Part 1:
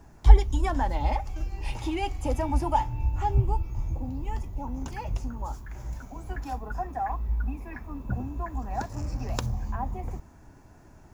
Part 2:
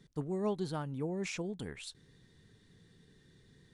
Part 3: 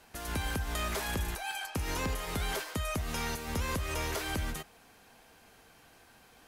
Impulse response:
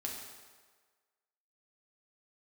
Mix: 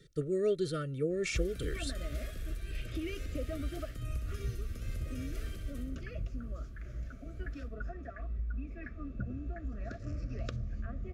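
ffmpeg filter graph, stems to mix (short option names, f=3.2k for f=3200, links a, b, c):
-filter_complex "[0:a]lowpass=3.9k,acompressor=threshold=-28dB:ratio=6,adelay=1100,volume=-4.5dB[a];[1:a]aecho=1:1:2.2:0.7,volume=2.5dB[b];[2:a]adelay=1200,volume=-17dB,asplit=2[c][d];[d]volume=-5.5dB,aecho=0:1:64|128|192|256|320|384:1|0.46|0.212|0.0973|0.0448|0.0206[e];[a][b][c][e]amix=inputs=4:normalize=0,asuperstop=centerf=890:order=20:qfactor=2"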